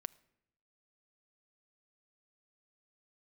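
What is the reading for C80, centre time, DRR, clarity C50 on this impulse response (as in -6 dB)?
24.5 dB, 1 ms, 15.5 dB, 22.5 dB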